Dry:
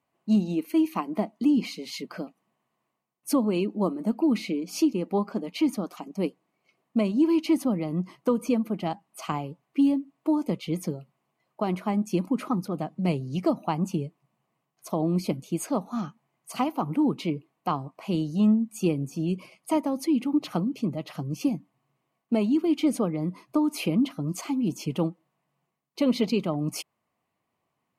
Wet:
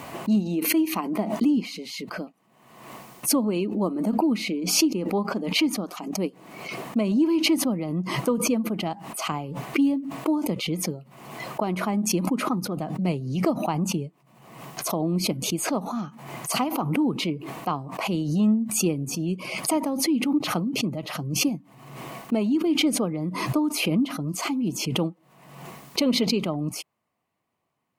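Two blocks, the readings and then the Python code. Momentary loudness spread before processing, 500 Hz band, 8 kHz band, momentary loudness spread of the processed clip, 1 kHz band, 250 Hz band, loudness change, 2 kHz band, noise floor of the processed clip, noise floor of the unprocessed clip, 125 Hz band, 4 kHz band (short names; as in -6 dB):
10 LU, +1.0 dB, +12.5 dB, 13 LU, +2.5 dB, +1.0 dB, +2.0 dB, +9.5 dB, -64 dBFS, -80 dBFS, +1.5 dB, +10.5 dB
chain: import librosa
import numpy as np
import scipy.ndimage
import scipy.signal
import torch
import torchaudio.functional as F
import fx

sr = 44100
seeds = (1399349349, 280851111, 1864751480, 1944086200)

y = fx.pre_swell(x, sr, db_per_s=52.0)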